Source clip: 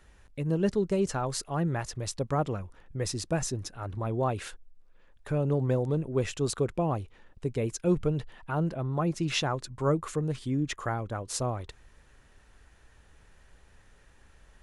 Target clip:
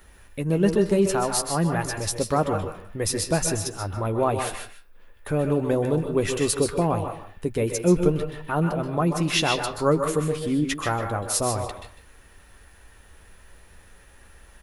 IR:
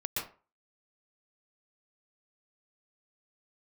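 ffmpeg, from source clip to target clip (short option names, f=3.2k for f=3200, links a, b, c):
-filter_complex "[0:a]equalizer=f=130:t=o:w=0.2:g=-10.5,aexciter=amount=4.2:drive=5.4:freq=9.9k,asplit=2[a][b];[b]adelay=151.6,volume=-11dB,highshelf=f=4k:g=-3.41[c];[a][c]amix=inputs=2:normalize=0,asplit=2[d][e];[1:a]atrim=start_sample=2205,lowshelf=f=490:g=-9.5,adelay=11[f];[e][f]afir=irnorm=-1:irlink=0,volume=-6dB[g];[d][g]amix=inputs=2:normalize=0,volume=6dB"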